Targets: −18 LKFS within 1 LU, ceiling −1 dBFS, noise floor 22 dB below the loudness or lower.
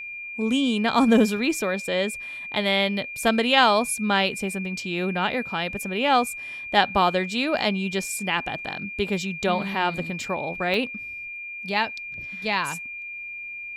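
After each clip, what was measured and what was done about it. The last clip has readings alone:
number of dropouts 1; longest dropout 2.2 ms; interfering tone 2,400 Hz; level of the tone −33 dBFS; integrated loudness −24.0 LKFS; sample peak −4.0 dBFS; target loudness −18.0 LKFS
→ repair the gap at 0:10.74, 2.2 ms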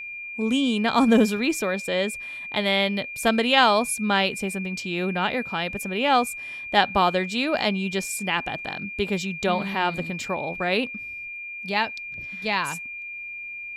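number of dropouts 0; interfering tone 2,400 Hz; level of the tone −33 dBFS
→ notch filter 2,400 Hz, Q 30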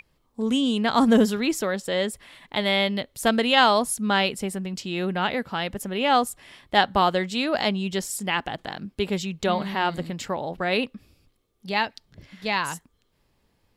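interfering tone none found; integrated loudness −24.0 LKFS; sample peak −4.5 dBFS; target loudness −18.0 LKFS
→ level +6 dB
brickwall limiter −1 dBFS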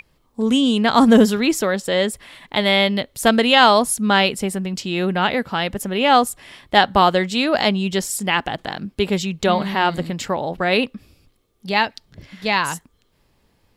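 integrated loudness −18.5 LKFS; sample peak −1.0 dBFS; background noise floor −63 dBFS

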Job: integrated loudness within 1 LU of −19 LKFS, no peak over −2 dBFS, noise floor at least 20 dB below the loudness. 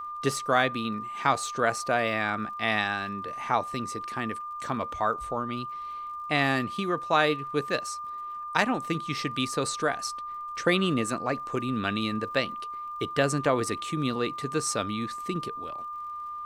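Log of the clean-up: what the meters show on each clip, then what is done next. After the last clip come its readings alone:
crackle rate 42 per second; interfering tone 1,200 Hz; level of the tone −34 dBFS; integrated loudness −28.5 LKFS; sample peak −7.0 dBFS; target loudness −19.0 LKFS
→ click removal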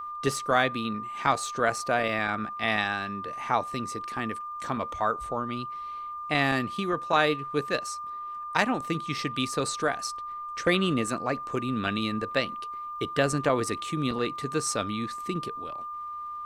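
crackle rate 0.36 per second; interfering tone 1,200 Hz; level of the tone −34 dBFS
→ notch filter 1,200 Hz, Q 30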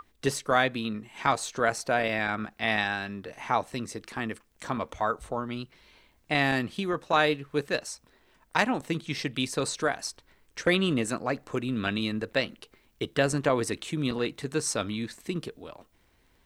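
interfering tone none found; integrated loudness −29.0 LKFS; sample peak −8.0 dBFS; target loudness −19.0 LKFS
→ level +10 dB
brickwall limiter −2 dBFS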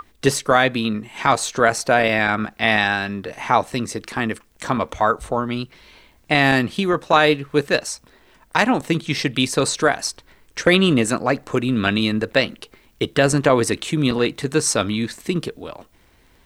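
integrated loudness −19.5 LKFS; sample peak −2.0 dBFS; background noise floor −56 dBFS

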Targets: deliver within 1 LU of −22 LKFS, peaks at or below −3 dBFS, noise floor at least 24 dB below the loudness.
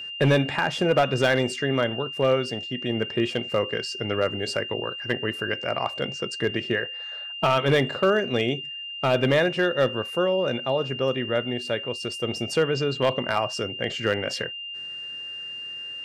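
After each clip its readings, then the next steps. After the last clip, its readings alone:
share of clipped samples 0.4%; peaks flattened at −13.0 dBFS; interfering tone 2,800 Hz; level of the tone −33 dBFS; integrated loudness −25.0 LKFS; sample peak −13.0 dBFS; target loudness −22.0 LKFS
→ clipped peaks rebuilt −13 dBFS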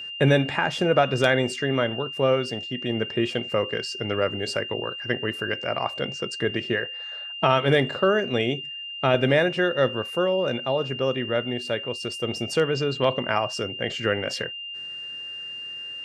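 share of clipped samples 0.0%; interfering tone 2,800 Hz; level of the tone −33 dBFS
→ notch filter 2,800 Hz, Q 30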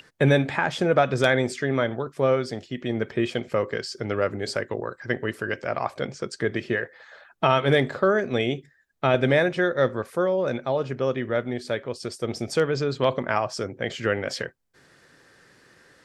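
interfering tone none found; integrated loudness −25.0 LKFS; sample peak −4.5 dBFS; target loudness −22.0 LKFS
→ level +3 dB
brickwall limiter −3 dBFS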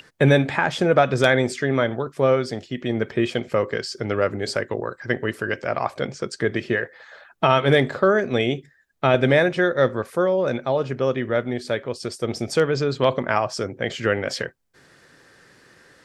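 integrated loudness −22.0 LKFS; sample peak −3.0 dBFS; background noise floor −56 dBFS

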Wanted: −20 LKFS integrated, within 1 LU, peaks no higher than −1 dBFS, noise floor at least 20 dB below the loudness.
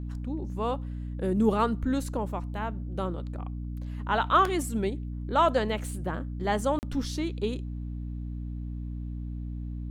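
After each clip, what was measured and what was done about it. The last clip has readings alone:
number of dropouts 1; longest dropout 39 ms; mains hum 60 Hz; hum harmonics up to 300 Hz; level of the hum −32 dBFS; integrated loudness −30.0 LKFS; sample peak −10.5 dBFS; target loudness −20.0 LKFS
→ repair the gap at 0:06.79, 39 ms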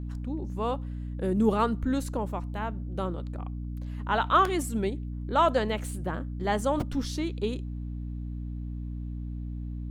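number of dropouts 0; mains hum 60 Hz; hum harmonics up to 300 Hz; level of the hum −32 dBFS
→ hum removal 60 Hz, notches 5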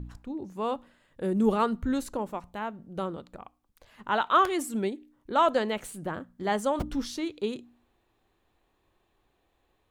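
mains hum none found; integrated loudness −29.5 LKFS; sample peak −11.0 dBFS; target loudness −20.0 LKFS
→ level +9.5 dB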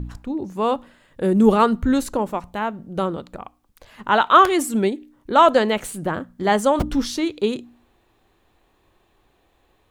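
integrated loudness −20.0 LKFS; sample peak −1.5 dBFS; background noise floor −63 dBFS

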